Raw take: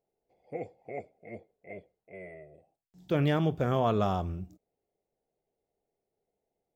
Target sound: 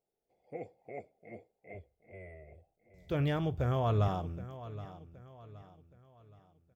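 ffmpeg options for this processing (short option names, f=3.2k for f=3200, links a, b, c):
-filter_complex "[0:a]asettb=1/sr,asplit=3[a][b][c];[a]atrim=end=1.744[d];[b]atrim=start=1.74:end=4.08,asetpts=PTS-STARTPTS,afade=t=in:d=0.004:c=qsin,afade=t=out:st=2.336:d=0.004:c=qsin,lowshelf=f=120:t=q:w=1.5:g=14[e];[c]atrim=start=4.076[f];[d][e]acrossfade=d=0.004:c1=hsin:c2=qsin[g];[g][f]acrossfade=d=0.004:c1=qsin:c2=hsin,aecho=1:1:771|1542|2313|3084:0.178|0.0711|0.0285|0.0114,volume=-5dB"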